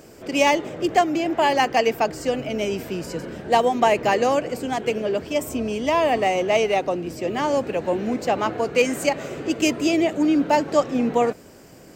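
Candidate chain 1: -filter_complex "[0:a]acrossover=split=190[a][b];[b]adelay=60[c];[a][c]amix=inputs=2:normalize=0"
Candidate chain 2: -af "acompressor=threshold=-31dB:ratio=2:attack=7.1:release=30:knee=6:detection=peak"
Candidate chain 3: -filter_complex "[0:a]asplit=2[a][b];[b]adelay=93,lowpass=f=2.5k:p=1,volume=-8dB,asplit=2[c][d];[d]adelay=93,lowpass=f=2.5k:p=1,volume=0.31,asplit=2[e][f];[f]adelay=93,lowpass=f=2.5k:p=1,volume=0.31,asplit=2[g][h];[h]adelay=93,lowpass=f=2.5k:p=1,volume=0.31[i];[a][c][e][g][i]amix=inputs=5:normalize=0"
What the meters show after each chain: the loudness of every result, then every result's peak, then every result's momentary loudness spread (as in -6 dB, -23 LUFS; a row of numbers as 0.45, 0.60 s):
-22.5, -28.5, -21.0 LUFS; -5.5, -15.0, -5.0 dBFS; 8, 5, 7 LU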